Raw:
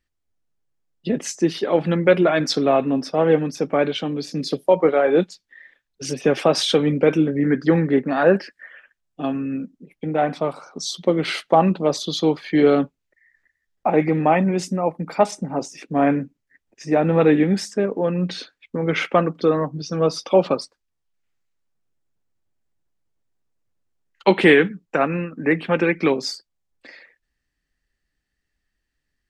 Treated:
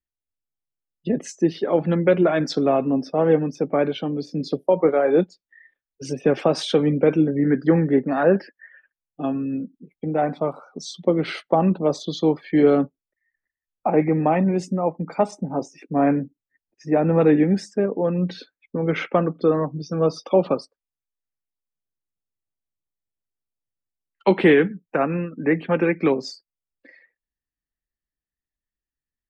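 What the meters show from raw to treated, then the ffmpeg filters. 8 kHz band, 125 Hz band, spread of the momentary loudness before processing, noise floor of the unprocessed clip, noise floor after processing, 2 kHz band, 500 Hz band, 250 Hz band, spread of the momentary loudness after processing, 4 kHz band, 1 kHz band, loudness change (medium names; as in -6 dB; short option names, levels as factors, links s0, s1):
no reading, 0.0 dB, 11 LU, -78 dBFS, under -85 dBFS, -5.0 dB, -1.0 dB, 0.0 dB, 10 LU, -7.5 dB, -3.0 dB, -1.0 dB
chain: -filter_complex "[0:a]afftdn=nr=15:nf=-40,equalizer=f=5300:w=0.34:g=-7.5,acrossover=split=460|3000[s0][s1][s2];[s1]acompressor=threshold=0.141:ratio=8[s3];[s0][s3][s2]amix=inputs=3:normalize=0"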